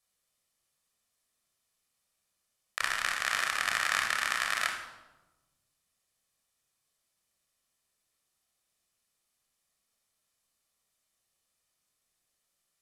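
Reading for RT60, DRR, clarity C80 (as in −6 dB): 1.1 s, 2.5 dB, 8.5 dB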